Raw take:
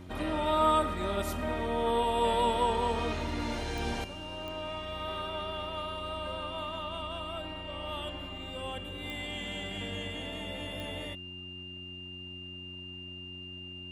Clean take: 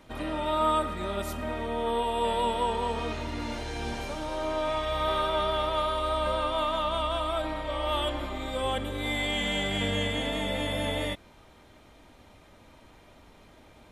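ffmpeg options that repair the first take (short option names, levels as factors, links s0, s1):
-af "adeclick=t=4,bandreject=f=90.8:t=h:w=4,bandreject=f=181.6:t=h:w=4,bandreject=f=272.4:t=h:w=4,bandreject=f=363.2:t=h:w=4,bandreject=f=2800:w=30,asetnsamples=n=441:p=0,asendcmd='4.04 volume volume 10dB',volume=1"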